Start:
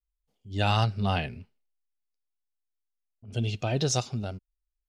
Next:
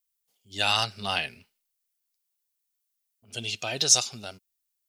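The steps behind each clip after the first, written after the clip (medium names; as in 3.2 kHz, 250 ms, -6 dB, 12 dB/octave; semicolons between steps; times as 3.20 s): tilt EQ +4.5 dB/octave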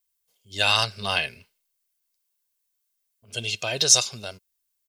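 comb 1.9 ms, depth 38%; trim +3 dB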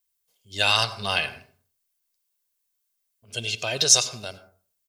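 reverberation RT60 0.45 s, pre-delay 82 ms, DRR 14 dB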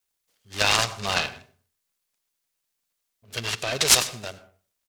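delay time shaken by noise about 1.2 kHz, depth 0.048 ms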